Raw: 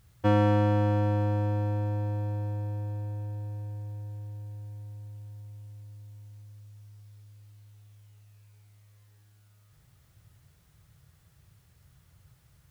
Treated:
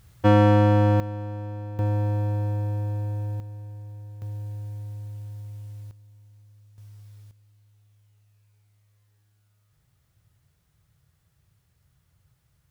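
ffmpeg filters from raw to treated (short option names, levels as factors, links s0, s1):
-af "asetnsamples=n=441:p=0,asendcmd='1 volume volume -6dB;1.79 volume volume 6dB;3.4 volume volume -1.5dB;4.22 volume volume 6.5dB;5.91 volume volume -4.5dB;6.78 volume volume 4.5dB;7.31 volume volume -6dB',volume=2"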